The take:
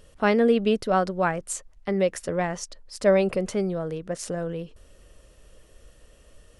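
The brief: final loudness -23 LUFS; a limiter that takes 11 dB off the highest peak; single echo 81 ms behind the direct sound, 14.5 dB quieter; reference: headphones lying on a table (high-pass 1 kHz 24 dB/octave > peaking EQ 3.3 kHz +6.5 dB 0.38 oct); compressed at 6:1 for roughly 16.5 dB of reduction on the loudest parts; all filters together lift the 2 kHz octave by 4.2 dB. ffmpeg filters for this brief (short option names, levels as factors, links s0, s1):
-af "equalizer=f=2000:t=o:g=5,acompressor=threshold=0.0224:ratio=6,alimiter=level_in=2.24:limit=0.0631:level=0:latency=1,volume=0.447,highpass=f=1000:w=0.5412,highpass=f=1000:w=1.3066,equalizer=f=3300:t=o:w=0.38:g=6.5,aecho=1:1:81:0.188,volume=15.8"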